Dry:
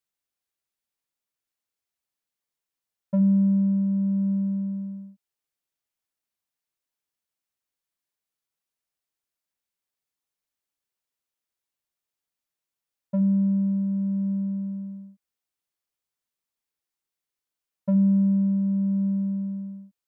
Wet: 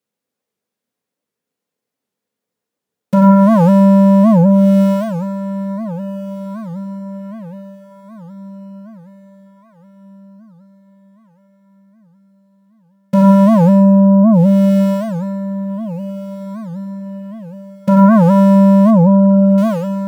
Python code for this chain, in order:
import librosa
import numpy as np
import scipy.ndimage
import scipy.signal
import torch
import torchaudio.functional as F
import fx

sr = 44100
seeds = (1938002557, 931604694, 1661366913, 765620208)

p1 = fx.halfwave_hold(x, sr)
p2 = scipy.signal.sosfilt(scipy.signal.butter(2, 110.0, 'highpass', fs=sr, output='sos'), p1)
p3 = fx.leveller(p2, sr, passes=1)
p4 = fx.small_body(p3, sr, hz=(220.0, 440.0), ring_ms=35, db=17)
p5 = fx.fold_sine(p4, sr, drive_db=11, ceiling_db=4.0)
p6 = p4 + (p5 * librosa.db_to_amplitude(-10.0))
p7 = fx.brickwall_lowpass(p6, sr, high_hz=1100.0, at=(18.91, 19.58))
p8 = p7 + fx.echo_diffused(p7, sr, ms=1540, feedback_pct=41, wet_db=-13.0, dry=0)
p9 = fx.rev_fdn(p8, sr, rt60_s=2.3, lf_ratio=1.0, hf_ratio=0.55, size_ms=57.0, drr_db=1.5)
p10 = fx.record_warp(p9, sr, rpm=78.0, depth_cents=250.0)
y = p10 * librosa.db_to_amplitude(-7.0)